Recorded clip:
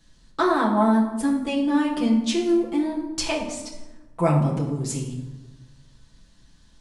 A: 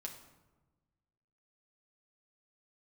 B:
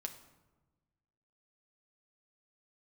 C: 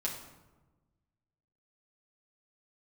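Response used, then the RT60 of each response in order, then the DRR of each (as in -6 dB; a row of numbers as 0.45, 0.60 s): C; 1.2, 1.2, 1.2 s; 0.5, 5.0, -4.0 dB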